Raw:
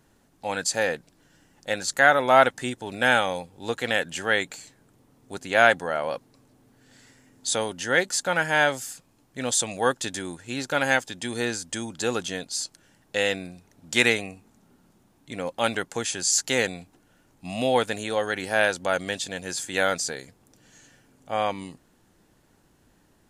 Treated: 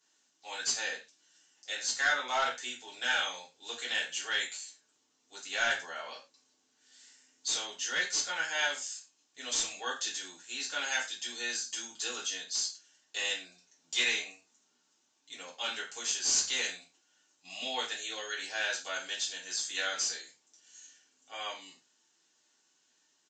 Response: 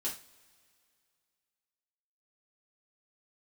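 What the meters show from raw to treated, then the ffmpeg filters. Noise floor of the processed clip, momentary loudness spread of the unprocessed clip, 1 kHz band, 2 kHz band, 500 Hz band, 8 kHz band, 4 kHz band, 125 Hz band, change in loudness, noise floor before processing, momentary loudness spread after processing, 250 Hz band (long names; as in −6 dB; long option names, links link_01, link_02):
−74 dBFS, 17 LU, −13.0 dB, −8.5 dB, −19.0 dB, −3.5 dB, −2.0 dB, below −25 dB, −8.0 dB, −63 dBFS, 15 LU, −21.5 dB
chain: -filter_complex "[0:a]aderivative,asplit=2[link_01][link_02];[link_02]aeval=exprs='(mod(11.9*val(0)+1,2)-1)/11.9':channel_layout=same,volume=-9dB[link_03];[link_01][link_03]amix=inputs=2:normalize=0,acrossover=split=6100[link_04][link_05];[link_05]acompressor=threshold=-37dB:ratio=4:attack=1:release=60[link_06];[link_04][link_06]amix=inputs=2:normalize=0[link_07];[1:a]atrim=start_sample=2205,atrim=end_sample=6174[link_08];[link_07][link_08]afir=irnorm=-1:irlink=0,aresample=16000,aresample=44100"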